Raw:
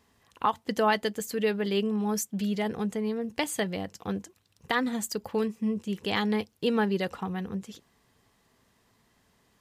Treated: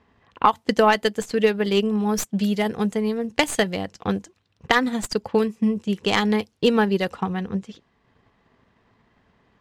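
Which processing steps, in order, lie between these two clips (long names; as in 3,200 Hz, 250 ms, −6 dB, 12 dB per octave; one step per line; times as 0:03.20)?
stylus tracing distortion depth 0.048 ms
low-pass that shuts in the quiet parts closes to 2,500 Hz, open at −25 dBFS
0:02.41–0:04.79: high-shelf EQ 6,500 Hz +5.5 dB
transient designer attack +4 dB, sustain −4 dB
level +6 dB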